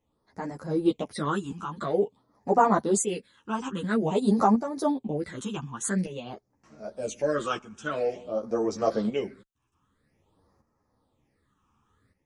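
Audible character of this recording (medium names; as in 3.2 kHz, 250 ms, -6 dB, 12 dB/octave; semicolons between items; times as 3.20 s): phasing stages 8, 0.49 Hz, lowest notch 570–3300 Hz; tremolo saw up 0.66 Hz, depth 65%; a shimmering, thickened sound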